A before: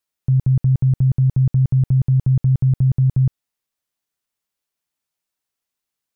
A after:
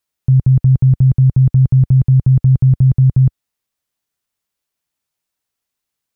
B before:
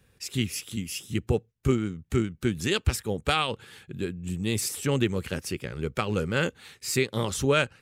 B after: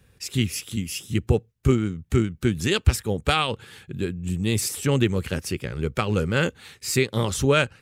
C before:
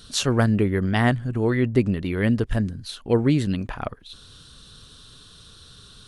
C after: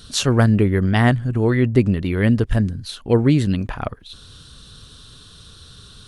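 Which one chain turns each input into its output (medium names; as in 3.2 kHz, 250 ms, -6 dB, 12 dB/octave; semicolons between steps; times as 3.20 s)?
peaking EQ 71 Hz +4 dB 2.1 oct; trim +3 dB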